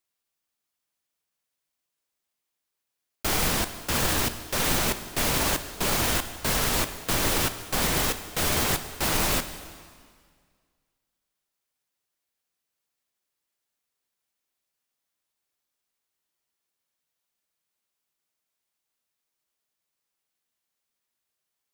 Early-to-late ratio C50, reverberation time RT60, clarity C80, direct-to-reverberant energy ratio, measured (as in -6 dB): 11.5 dB, 1.8 s, 12.5 dB, 10.0 dB